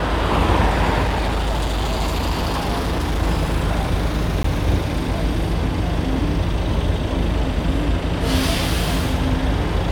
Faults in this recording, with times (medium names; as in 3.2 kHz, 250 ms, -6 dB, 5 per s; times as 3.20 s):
1.02–3.23 s: clipped -16.5 dBFS
4.43–4.44 s: dropout 14 ms